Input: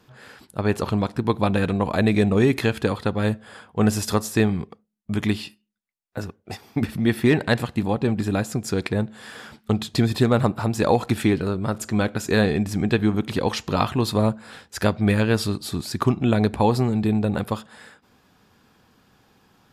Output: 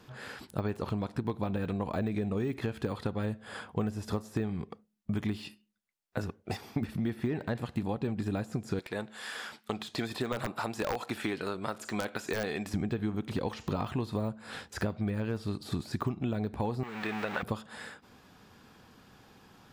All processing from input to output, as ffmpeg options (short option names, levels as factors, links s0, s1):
-filter_complex "[0:a]asettb=1/sr,asplit=3[s0][s1][s2];[s0]atrim=end=8.794[s3];[s1]atrim=start=8.79:end=12.74,asetpts=PTS-STARTPTS,afade=t=in:d=0.004:c=qsin,afade=t=out:st=3.946:d=0.004:c=qsin,highpass=f=900:p=1,aeval=exprs='(mod(4.22*val(0)+1,2)-1)/4.22':c=same[s4];[s2]atrim=start=12.736[s5];[s3][s4]acrossfade=d=0.004:c1=hsin:c2=qsin[s6];[s6][s5]acrossfade=d=0.004:c1=qsin:c2=hsin,asettb=1/sr,asplit=3[s7][s8][s9];[s7]atrim=end=16.834[s10];[s8]atrim=start=16.83:end=17.43,asetpts=PTS-STARTPTS,afade=t=in:d=0.004:c=qsin,afade=t=out:st=0.596:d=0.004:c=qsin,aeval=exprs='val(0)+0.5*0.0422*sgn(val(0))':c=same,highpass=f=1300:p=1,equalizer=f=2000:t=o:w=2.5:g=14[s11];[s9]atrim=start=17.426[s12];[s10][s11]acrossfade=d=0.004:c1=hsin:c2=qsin[s13];[s13][s12]acrossfade=d=0.004:c1=qsin:c2=hsin,deesser=1,highshelf=f=11000:g=-3.5,acompressor=threshold=0.0282:ratio=6,volume=1.19"